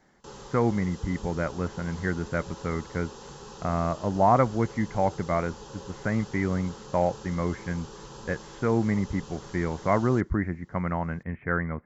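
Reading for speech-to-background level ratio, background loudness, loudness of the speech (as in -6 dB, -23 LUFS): 15.5 dB, -44.0 LUFS, -28.5 LUFS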